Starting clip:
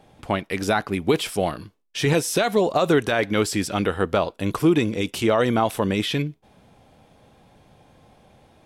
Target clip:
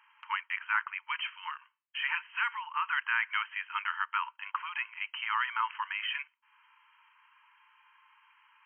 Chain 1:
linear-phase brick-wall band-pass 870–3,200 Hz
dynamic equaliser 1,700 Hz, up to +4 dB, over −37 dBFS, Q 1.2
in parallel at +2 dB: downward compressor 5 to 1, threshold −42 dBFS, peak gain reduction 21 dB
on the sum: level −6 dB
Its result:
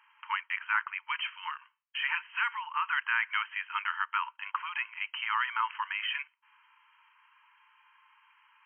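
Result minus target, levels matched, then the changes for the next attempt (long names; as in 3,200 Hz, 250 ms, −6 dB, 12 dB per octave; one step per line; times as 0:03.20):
downward compressor: peak gain reduction −8.5 dB
change: downward compressor 5 to 1, threshold −52.5 dBFS, peak gain reduction 29 dB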